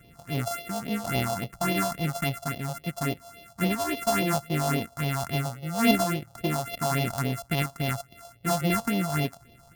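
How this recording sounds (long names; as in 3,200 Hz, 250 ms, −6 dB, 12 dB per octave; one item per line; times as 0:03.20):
a buzz of ramps at a fixed pitch in blocks of 64 samples
phaser sweep stages 4, 3.6 Hz, lowest notch 330–1,400 Hz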